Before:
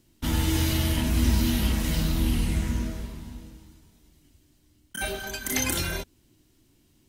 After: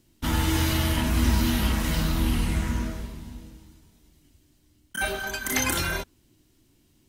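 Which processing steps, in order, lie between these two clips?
dynamic equaliser 1,200 Hz, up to +7 dB, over −48 dBFS, Q 0.95

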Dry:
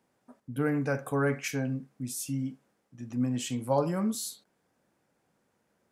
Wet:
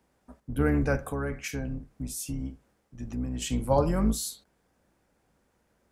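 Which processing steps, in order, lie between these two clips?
sub-octave generator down 2 octaves, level −1 dB
0:00.96–0:03.42: downward compressor 2.5 to 1, threshold −35 dBFS, peak gain reduction 9 dB
level +2.5 dB

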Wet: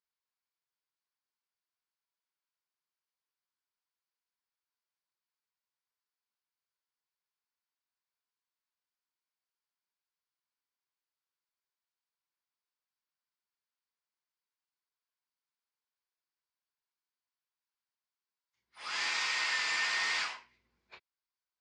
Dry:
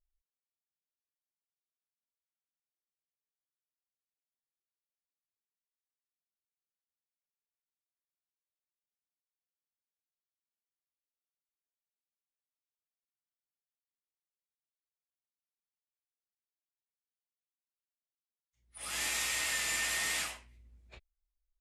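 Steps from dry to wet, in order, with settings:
loudspeaker in its box 260–5,800 Hz, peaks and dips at 270 Hz −7 dB, 590 Hz −5 dB, 1,000 Hz +9 dB, 1,500 Hz +6 dB, 2,200 Hz +3 dB, 4,700 Hz +6 dB

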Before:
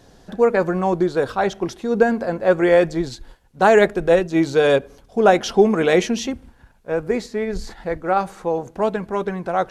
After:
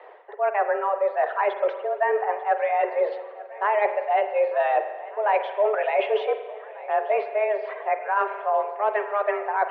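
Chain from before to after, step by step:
single-sideband voice off tune +210 Hz 220–2,500 Hz
reversed playback
downward compressor 10 to 1, threshold −26 dBFS, peak gain reduction 18 dB
reversed playback
floating-point word with a short mantissa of 8 bits
reverb reduction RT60 1.5 s
on a send: feedback echo with a long and a short gap by turns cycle 1,489 ms, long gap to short 1.5 to 1, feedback 50%, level −19.5 dB
on the sum: spring reverb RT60 1.3 s, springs 43 ms, chirp 40 ms, DRR 8.5 dB
level +7 dB

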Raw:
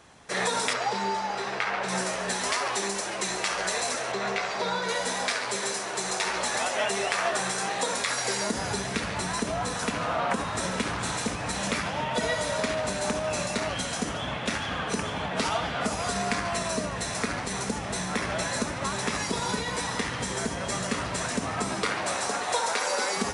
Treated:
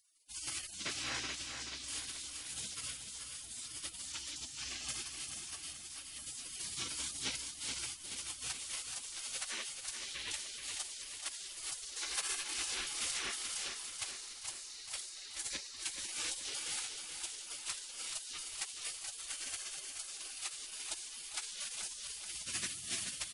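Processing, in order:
0:11.96–0:12.54: bass and treble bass +10 dB, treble +11 dB
gate on every frequency bin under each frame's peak −25 dB weak
on a send: repeating echo 429 ms, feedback 54%, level −7 dB
on the sum: level +2.5 dB

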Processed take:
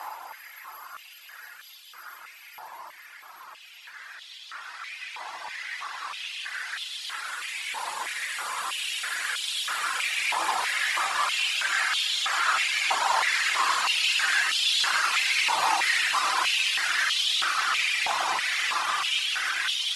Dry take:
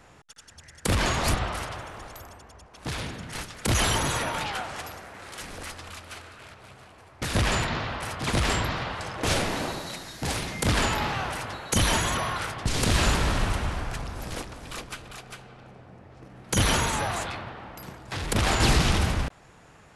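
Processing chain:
extreme stretch with random phases 16×, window 0.50 s, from 0:17.73
reverb reduction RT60 1.9 s
on a send at −9.5 dB: convolution reverb RT60 0.55 s, pre-delay 3 ms
on the sum: high-pass on a step sequencer 3.1 Hz 930–3,300 Hz

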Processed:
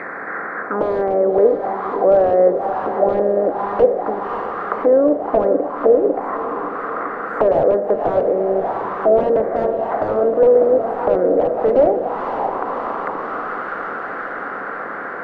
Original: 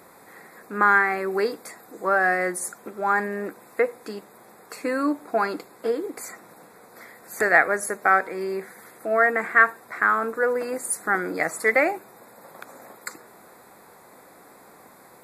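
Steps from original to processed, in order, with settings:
compressor on every frequency bin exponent 0.6
high-pass filter 77 Hz 24 dB per octave
tilt shelving filter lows +3 dB, about 1,200 Hz
wrap-around overflow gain 8.5 dB
feedback delay with all-pass diffusion 580 ms, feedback 67%, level −9 dB
envelope-controlled low-pass 570–2,200 Hz down, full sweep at −16.5 dBFS
level −1 dB

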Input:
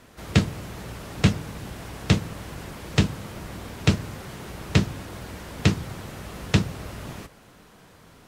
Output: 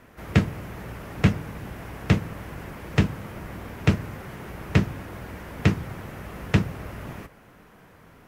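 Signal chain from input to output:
octave-band graphic EQ 2,000/4,000/8,000 Hz +3/−8/−8 dB

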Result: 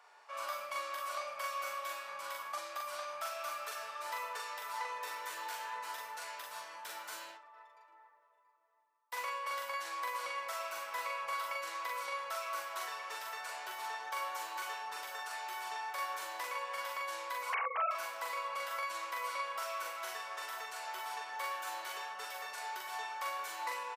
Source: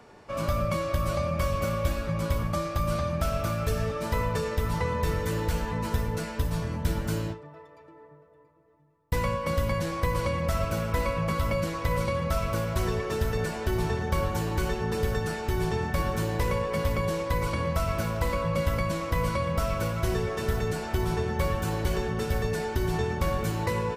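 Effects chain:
0:17.50–0:17.91: three sine waves on the formant tracks
four-pole ladder high-pass 720 Hz, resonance 25%
double-tracking delay 42 ms −2 dB
level −2 dB

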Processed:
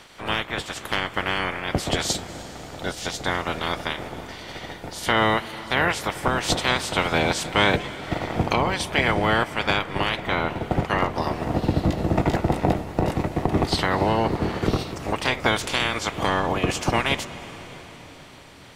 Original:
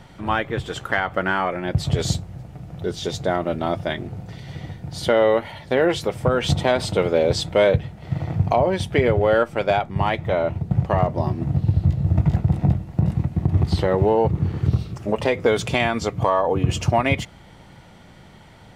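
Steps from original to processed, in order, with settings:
ceiling on every frequency bin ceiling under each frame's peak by 24 dB
convolution reverb RT60 5.3 s, pre-delay 183 ms, DRR 14 dB
level −3 dB

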